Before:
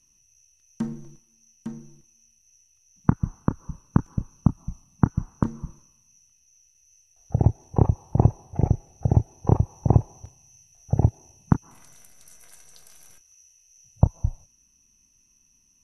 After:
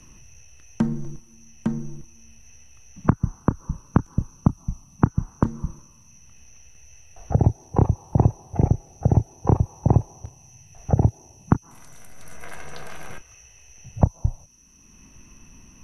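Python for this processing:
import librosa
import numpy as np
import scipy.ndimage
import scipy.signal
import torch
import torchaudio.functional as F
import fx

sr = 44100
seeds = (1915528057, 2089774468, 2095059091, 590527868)

y = fx.band_squash(x, sr, depth_pct=70)
y = F.gain(torch.from_numpy(y), 2.5).numpy()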